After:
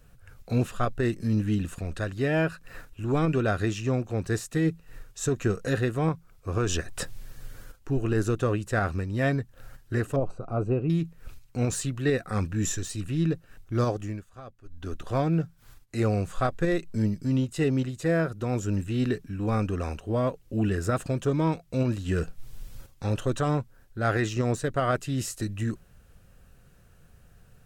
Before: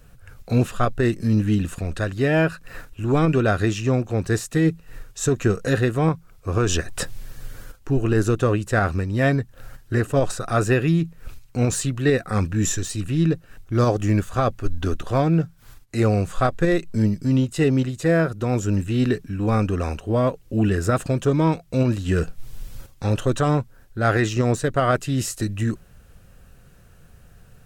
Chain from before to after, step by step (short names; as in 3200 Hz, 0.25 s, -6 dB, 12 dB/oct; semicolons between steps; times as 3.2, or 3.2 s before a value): 10.16–10.9 running mean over 25 samples; 13.8–15.12 dip -17.5 dB, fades 0.44 s; gain -6 dB